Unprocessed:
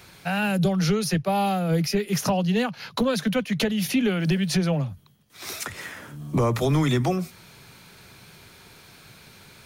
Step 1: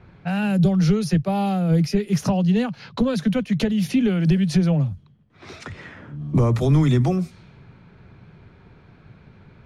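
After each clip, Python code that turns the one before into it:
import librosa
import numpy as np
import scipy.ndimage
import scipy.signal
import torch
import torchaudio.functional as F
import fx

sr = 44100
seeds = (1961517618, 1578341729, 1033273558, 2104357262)

y = scipy.signal.sosfilt(scipy.signal.butter(2, 10000.0, 'lowpass', fs=sr, output='sos'), x)
y = fx.env_lowpass(y, sr, base_hz=1600.0, full_db=-23.0)
y = fx.low_shelf(y, sr, hz=330.0, db=12.0)
y = y * librosa.db_to_amplitude(-4.0)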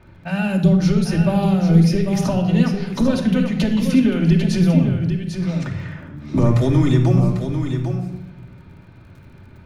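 y = fx.dmg_crackle(x, sr, seeds[0], per_s=30.0, level_db=-45.0)
y = y + 10.0 ** (-7.5 / 20.0) * np.pad(y, (int(796 * sr / 1000.0), 0))[:len(y)]
y = fx.room_shoebox(y, sr, seeds[1], volume_m3=3400.0, walls='furnished', distance_m=2.6)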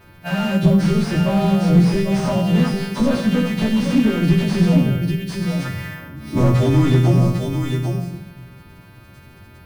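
y = fx.freq_snap(x, sr, grid_st=2)
y = np.repeat(scipy.signal.resample_poly(y, 1, 3), 3)[:len(y)]
y = fx.slew_limit(y, sr, full_power_hz=85.0)
y = y * librosa.db_to_amplitude(2.0)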